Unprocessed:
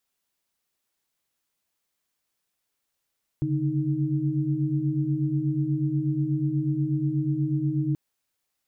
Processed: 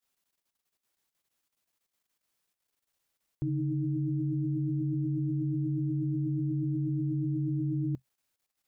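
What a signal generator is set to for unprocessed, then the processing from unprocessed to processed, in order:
held notes C#3/D3/D#4 sine, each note −27 dBFS 4.53 s
dynamic equaliser 130 Hz, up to +4 dB, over −37 dBFS, Q 5.6
output level in coarse steps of 10 dB

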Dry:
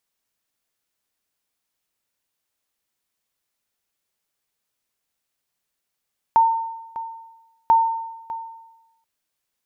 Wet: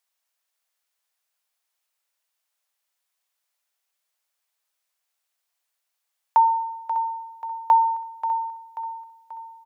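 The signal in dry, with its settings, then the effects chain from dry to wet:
ping with an echo 908 Hz, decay 1.02 s, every 1.34 s, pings 2, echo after 0.60 s, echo −15.5 dB −9 dBFS
high-pass filter 570 Hz 24 dB per octave
repeating echo 535 ms, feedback 48%, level −10.5 dB

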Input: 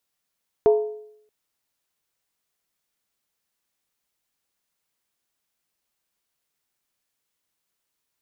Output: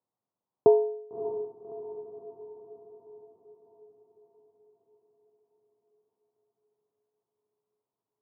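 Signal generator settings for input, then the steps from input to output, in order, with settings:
struck skin, lowest mode 426 Hz, decay 0.72 s, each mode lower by 10 dB, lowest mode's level −10.5 dB
elliptic band-pass filter 100–1,000 Hz, stop band 40 dB
feedback delay with all-pass diffusion 608 ms, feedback 54%, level −11.5 dB

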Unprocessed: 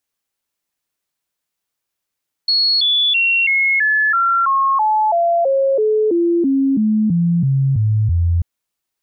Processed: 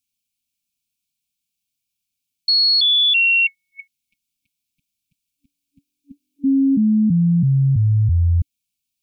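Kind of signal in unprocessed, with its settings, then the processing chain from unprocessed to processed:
stepped sweep 4,340 Hz down, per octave 3, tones 18, 0.33 s, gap 0.00 s −12 dBFS
brick-wall band-stop 290–2,200 Hz

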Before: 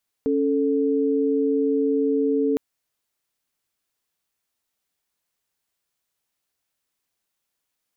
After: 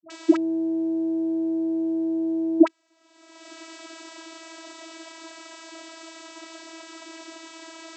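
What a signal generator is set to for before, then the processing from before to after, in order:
held notes C#4/A4 sine, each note −21 dBFS 2.31 s
upward compression, threshold −31 dBFS
all-pass dispersion highs, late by 99 ms, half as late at 550 Hz
channel vocoder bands 32, saw 326 Hz

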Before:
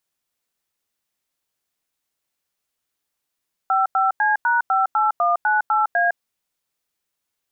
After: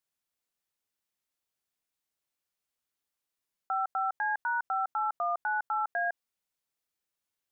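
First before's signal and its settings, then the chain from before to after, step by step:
touch tones "55C#58198A", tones 158 ms, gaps 92 ms, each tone −18 dBFS
output level in coarse steps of 22 dB
brickwall limiter −23.5 dBFS

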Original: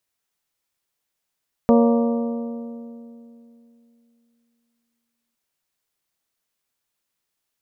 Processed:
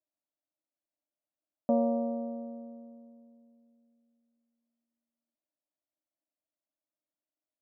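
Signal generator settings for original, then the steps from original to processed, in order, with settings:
struck metal bell, length 3.66 s, lowest mode 234 Hz, modes 6, decay 3.07 s, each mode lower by 3.5 dB, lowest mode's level −12 dB
pair of resonant band-passes 430 Hz, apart 0.97 octaves
high-frequency loss of the air 380 metres

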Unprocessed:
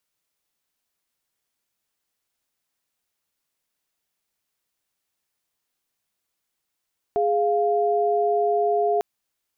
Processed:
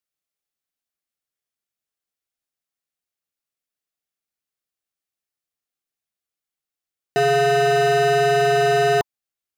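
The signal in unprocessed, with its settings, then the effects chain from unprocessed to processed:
held notes G#4/F5 sine, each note −21 dBFS 1.85 s
leveller curve on the samples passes 5
Butterworth band-reject 950 Hz, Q 6.5

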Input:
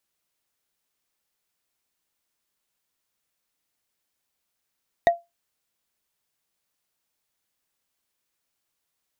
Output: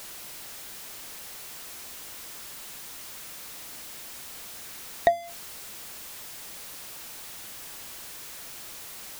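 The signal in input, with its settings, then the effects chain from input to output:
struck wood, lowest mode 686 Hz, decay 0.20 s, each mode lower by 8 dB, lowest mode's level −9.5 dB
converter with a step at zero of −35.5 dBFS
hum removal 88.09 Hz, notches 3

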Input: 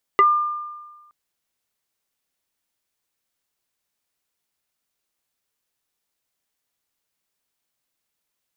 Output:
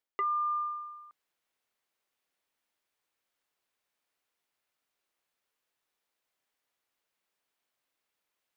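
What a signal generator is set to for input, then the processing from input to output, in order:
two-operator FM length 0.92 s, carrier 1,200 Hz, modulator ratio 0.67, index 1.1, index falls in 0.10 s exponential, decay 1.33 s, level −9.5 dB
reversed playback
downward compressor 12 to 1, threshold −29 dBFS
reversed playback
bass and treble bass −9 dB, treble −8 dB

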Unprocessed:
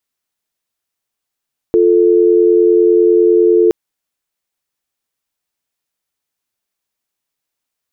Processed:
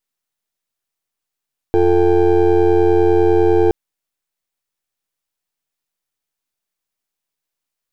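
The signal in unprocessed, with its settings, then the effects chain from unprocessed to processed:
call progress tone dial tone, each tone −9.5 dBFS 1.97 s
gain on one half-wave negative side −12 dB

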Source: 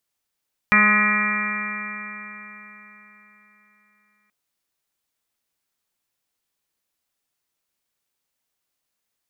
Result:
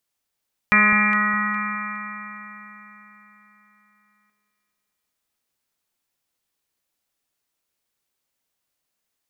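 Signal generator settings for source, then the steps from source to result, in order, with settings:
stiff-string partials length 3.58 s, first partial 207 Hz, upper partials −15/−14/−14/−5.5/1.5/−6/−3.5/4/−6/4.5 dB, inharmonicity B 0.00071, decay 3.98 s, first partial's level −20.5 dB
delay that swaps between a low-pass and a high-pass 206 ms, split 930 Hz, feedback 52%, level −5 dB

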